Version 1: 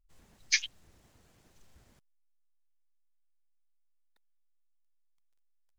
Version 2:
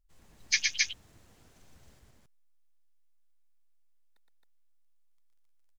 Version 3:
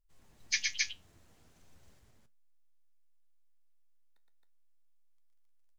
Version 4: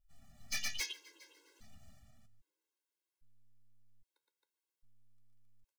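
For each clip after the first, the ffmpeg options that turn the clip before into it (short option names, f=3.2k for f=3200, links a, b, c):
-af "aecho=1:1:116.6|268.2:0.708|0.891"
-af "flanger=delay=6.5:depth=6.4:regen=72:speed=0.36:shape=triangular"
-filter_complex "[0:a]aeval=exprs='(tanh(63.1*val(0)+0.6)-tanh(0.6))/63.1':c=same,asplit=3[a][b][c];[b]adelay=411,afreqshift=-110,volume=-22dB[d];[c]adelay=822,afreqshift=-220,volume=-31.6dB[e];[a][d][e]amix=inputs=3:normalize=0,afftfilt=real='re*gt(sin(2*PI*0.62*pts/sr)*(1-2*mod(floor(b*sr/1024/280),2)),0)':imag='im*gt(sin(2*PI*0.62*pts/sr)*(1-2*mod(floor(b*sr/1024/280),2)),0)':win_size=1024:overlap=0.75,volume=5.5dB"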